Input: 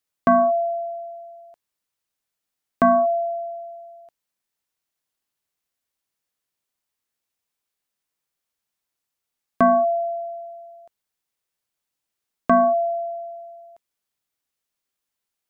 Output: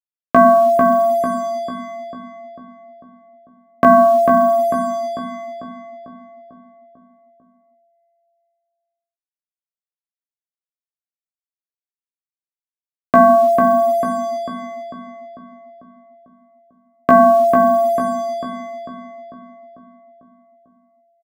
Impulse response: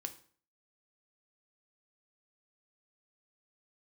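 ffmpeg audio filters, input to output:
-filter_complex "[0:a]highpass=52,atempo=0.73,acrusher=bits=6:mix=0:aa=0.5,bandreject=frequency=60:width_type=h:width=6,bandreject=frequency=120:width_type=h:width=6,bandreject=frequency=180:width_type=h:width=6,bandreject=frequency=240:width_type=h:width=6,bandreject=frequency=300:width_type=h:width=6,bandreject=frequency=360:width_type=h:width=6,bandreject=frequency=420:width_type=h:width=6,bandreject=frequency=480:width_type=h:width=6,asplit=2[link_01][link_02];[link_02]adelay=446,lowpass=frequency=1900:poles=1,volume=-3.5dB,asplit=2[link_03][link_04];[link_04]adelay=446,lowpass=frequency=1900:poles=1,volume=0.55,asplit=2[link_05][link_06];[link_06]adelay=446,lowpass=frequency=1900:poles=1,volume=0.55,asplit=2[link_07][link_08];[link_08]adelay=446,lowpass=frequency=1900:poles=1,volume=0.55,asplit=2[link_09][link_10];[link_10]adelay=446,lowpass=frequency=1900:poles=1,volume=0.55,asplit=2[link_11][link_12];[link_12]adelay=446,lowpass=frequency=1900:poles=1,volume=0.55,asplit=2[link_13][link_14];[link_14]adelay=446,lowpass=frequency=1900:poles=1,volume=0.55,asplit=2[link_15][link_16];[link_16]adelay=446,lowpass=frequency=1900:poles=1,volume=0.55[link_17];[link_03][link_05][link_07][link_09][link_11][link_13][link_15][link_17]amix=inputs=8:normalize=0[link_18];[link_01][link_18]amix=inputs=2:normalize=0,volume=6dB"

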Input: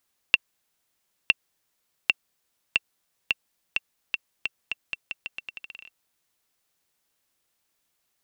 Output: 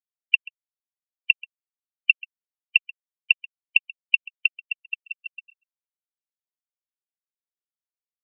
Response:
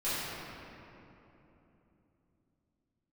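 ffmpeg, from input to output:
-filter_complex "[0:a]asettb=1/sr,asplit=3[link_01][link_02][link_03];[link_01]atrim=end=2.104[link_04];[link_02]atrim=start=2.1:end=4.6,asetpts=PTS-STARTPTS,afade=type=in:duration=0.004:curve=qsin,afade=type=out:start_time=2.496:duration=0.004:curve=qsin,acontrast=48[link_05];[link_03]atrim=start=4.596[link_06];[link_04][link_05]acrossfade=duration=0.004:curve1=hsin:curve2=qsin[link_07];[link_07][link_06]acrossfade=duration=0.004:curve1=qsin:curve2=hsin,afftfilt=real='re*gte(hypot(re,im),0.158)':imag='im*gte(hypot(re,im),0.158)':win_size=1024:overlap=0.75,agate=range=-8dB:threshold=-51dB:ratio=16:detection=peak,equalizer=frequency=2100:width_type=o:width=0.79:gain=-4,alimiter=limit=-9.5dB:level=0:latency=1,asplit=2[link_08][link_09];[link_09]adelay=134.1,volume=-21dB,highshelf=frequency=4000:gain=-3.02[link_10];[link_08][link_10]amix=inputs=2:normalize=0,afftfilt=real='re*eq(mod(floor(b*sr/1024/600),2),0)':imag='im*eq(mod(floor(b*sr/1024/600),2),0)':win_size=1024:overlap=0.75,volume=8dB"

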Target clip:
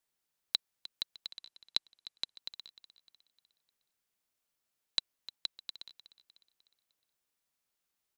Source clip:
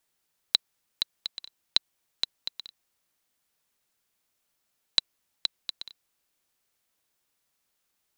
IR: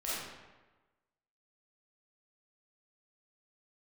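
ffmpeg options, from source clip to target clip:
-filter_complex "[0:a]asettb=1/sr,asplit=3[link_01][link_02][link_03];[link_01]atrim=end=1.304[link_04];[link_02]atrim=start=1.3:end=2.36,asetpts=PTS-STARTPTS,afade=type=in:duration=0.004:curve=qsin,afade=type=out:start_time=1.056:duration=0.004:curve=qsin,lowpass=frequency=12000:width=0.5412,lowpass=frequency=12000:width=1.3066[link_05];[link_03]atrim=start=2.356[link_06];[link_04][link_05]acrossfade=duration=0.004:curve1=hsin:curve2=qsin[link_07];[link_07][link_06]acrossfade=duration=0.004:curve1=qsin:curve2=hsin,aecho=1:1:304|608|912|1216:0.158|0.0713|0.0321|0.0144,volume=-8dB"

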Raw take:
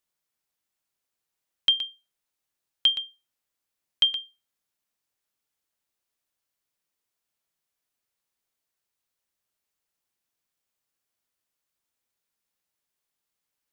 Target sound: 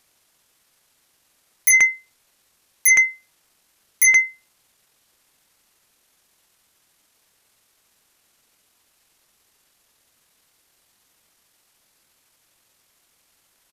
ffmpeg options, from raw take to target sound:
ffmpeg -i in.wav -af "asetrate=28595,aresample=44100,atempo=1.54221,aeval=exprs='0.316*sin(PI/2*7.08*val(0)/0.316)':channel_layout=same" out.wav

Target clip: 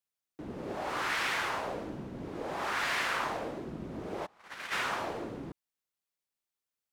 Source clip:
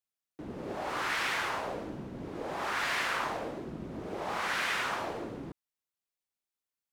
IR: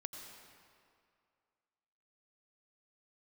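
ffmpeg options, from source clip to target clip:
-filter_complex "[0:a]asplit=3[link_01][link_02][link_03];[link_01]afade=type=out:start_time=4.25:duration=0.02[link_04];[link_02]agate=range=-30dB:threshold=-29dB:ratio=16:detection=peak,afade=type=in:start_time=4.25:duration=0.02,afade=type=out:start_time=4.71:duration=0.02[link_05];[link_03]afade=type=in:start_time=4.71:duration=0.02[link_06];[link_04][link_05][link_06]amix=inputs=3:normalize=0"

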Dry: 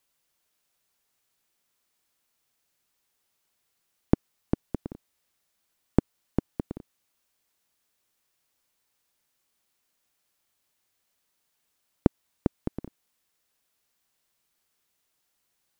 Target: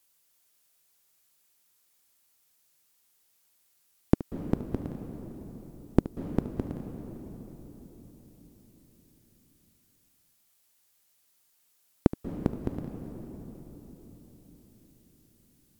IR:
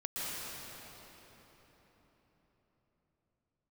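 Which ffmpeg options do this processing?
-filter_complex "[0:a]aemphasis=mode=production:type=cd,asplit=2[link_01][link_02];[1:a]atrim=start_sample=2205,adelay=73[link_03];[link_02][link_03]afir=irnorm=-1:irlink=0,volume=-12dB[link_04];[link_01][link_04]amix=inputs=2:normalize=0"

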